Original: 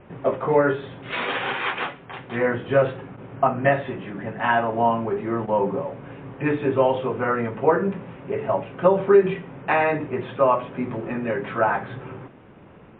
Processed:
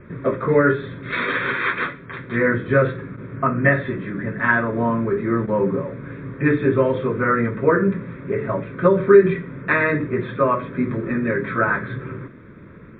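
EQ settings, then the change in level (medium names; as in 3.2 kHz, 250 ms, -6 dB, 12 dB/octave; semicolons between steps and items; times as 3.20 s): static phaser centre 2.9 kHz, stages 6; +7.0 dB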